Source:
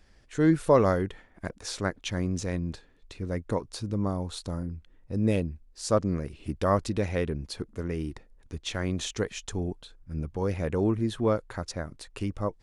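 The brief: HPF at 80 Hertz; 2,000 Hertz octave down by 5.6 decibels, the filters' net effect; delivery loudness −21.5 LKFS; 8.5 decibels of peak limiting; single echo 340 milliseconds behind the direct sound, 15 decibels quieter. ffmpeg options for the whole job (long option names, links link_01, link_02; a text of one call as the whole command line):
ffmpeg -i in.wav -af "highpass=80,equalizer=frequency=2000:width_type=o:gain=-7.5,alimiter=limit=-17.5dB:level=0:latency=1,aecho=1:1:340:0.178,volume=10.5dB" out.wav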